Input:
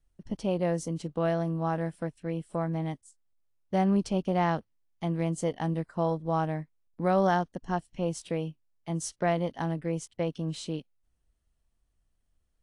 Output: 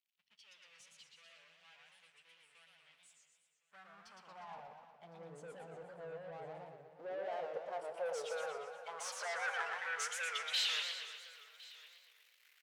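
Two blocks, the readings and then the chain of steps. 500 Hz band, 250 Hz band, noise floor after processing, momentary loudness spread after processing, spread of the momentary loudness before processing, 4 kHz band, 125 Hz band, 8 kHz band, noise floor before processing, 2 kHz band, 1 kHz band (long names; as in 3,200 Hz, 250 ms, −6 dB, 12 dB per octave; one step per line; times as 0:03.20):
−14.5 dB, −34.0 dB, −76 dBFS, 22 LU, 10 LU, +5.0 dB, −33.0 dB, −4.0 dB, −75 dBFS, −1.0 dB, −14.0 dB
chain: spectral dynamics exaggerated over time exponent 1.5
parametric band 470 Hz +7 dB 0.25 octaves
notch filter 900 Hz, Q 7.7
power curve on the samples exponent 0.5
reversed playback
downward compressor, threshold −33 dBFS, peak gain reduction 13 dB
reversed playback
high-pass filter sweep 2,700 Hz → 520 Hz, 0:02.89–0:05.32
soft clipping −33 dBFS, distortion −8 dB
band-pass filter sweep 220 Hz → 2,100 Hz, 0:06.31–0:10.21
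guitar amp tone stack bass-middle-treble 10-0-10
on a send: single-tap delay 1,060 ms −21 dB
on the sum: feedback delay network reverb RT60 2.1 s, high-frequency decay 0.85×, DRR 13 dB
feedback echo with a swinging delay time 119 ms, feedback 59%, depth 219 cents, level −3.5 dB
level +16.5 dB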